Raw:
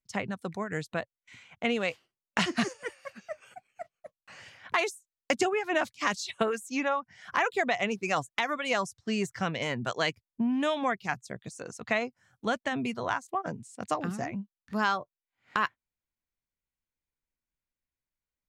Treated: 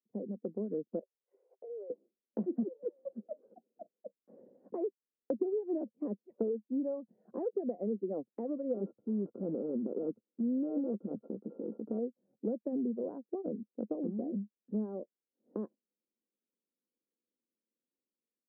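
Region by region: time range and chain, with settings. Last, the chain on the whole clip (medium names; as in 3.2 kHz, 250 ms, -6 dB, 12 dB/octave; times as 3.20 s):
0.99–1.90 s: Chebyshev high-pass 380 Hz, order 6 + compression, threshold -46 dBFS
8.74–11.99 s: sorted samples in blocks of 32 samples + transient shaper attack -6 dB, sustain +10 dB + loudspeaker Doppler distortion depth 0.39 ms
whole clip: level rider gain up to 8 dB; elliptic band-pass 210–520 Hz, stop band 80 dB; compression 2.5:1, threshold -35 dBFS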